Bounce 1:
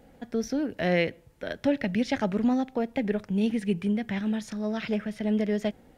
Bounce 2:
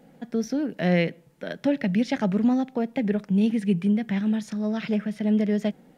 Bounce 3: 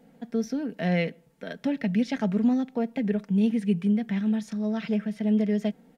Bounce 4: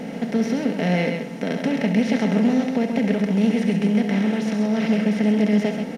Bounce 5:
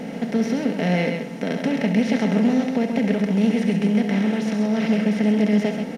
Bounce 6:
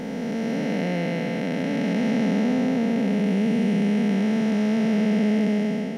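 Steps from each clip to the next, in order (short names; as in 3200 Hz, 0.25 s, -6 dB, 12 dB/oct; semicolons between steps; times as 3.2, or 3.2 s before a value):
resonant low shelf 120 Hz -10 dB, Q 3
comb 4.4 ms, depth 42%; gain -4 dB
per-bin compression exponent 0.4; loudspeakers at several distances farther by 23 m -9 dB, 45 m -6 dB
nothing audible
time blur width 0.691 s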